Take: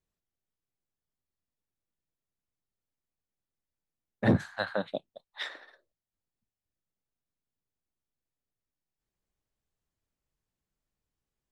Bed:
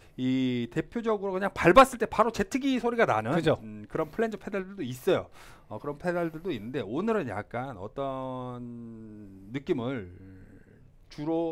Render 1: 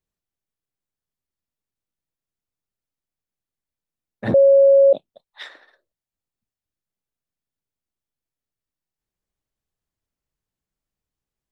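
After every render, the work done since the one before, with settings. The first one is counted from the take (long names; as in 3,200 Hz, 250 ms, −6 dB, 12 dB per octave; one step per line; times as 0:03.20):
0:04.34–0:04.93: beep over 551 Hz −8.5 dBFS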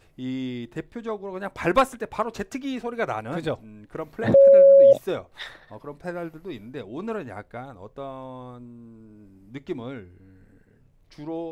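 mix in bed −3 dB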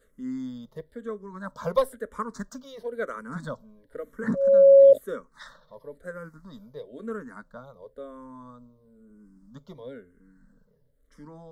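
phaser with its sweep stopped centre 510 Hz, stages 8
frequency shifter mixed with the dry sound −1 Hz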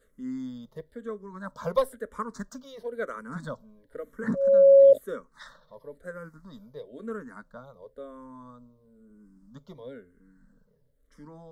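level −1.5 dB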